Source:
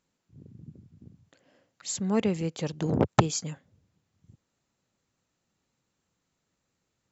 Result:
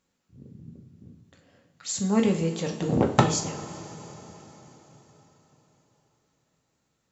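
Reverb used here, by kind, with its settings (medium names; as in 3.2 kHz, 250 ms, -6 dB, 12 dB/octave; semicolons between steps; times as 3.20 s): two-slope reverb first 0.4 s, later 4.5 s, from -18 dB, DRR 1.5 dB; trim +1 dB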